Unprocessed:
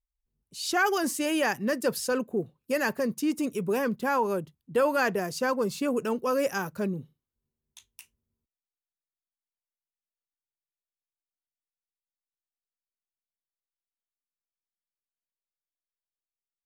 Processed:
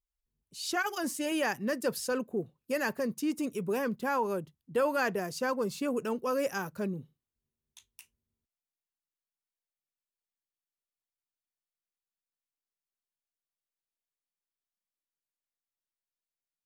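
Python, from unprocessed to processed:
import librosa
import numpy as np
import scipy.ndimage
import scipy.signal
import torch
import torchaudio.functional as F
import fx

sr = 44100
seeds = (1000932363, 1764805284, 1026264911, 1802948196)

y = fx.notch_comb(x, sr, f0_hz=390.0, at=(0.75, 1.32))
y = F.gain(torch.from_numpy(y), -4.0).numpy()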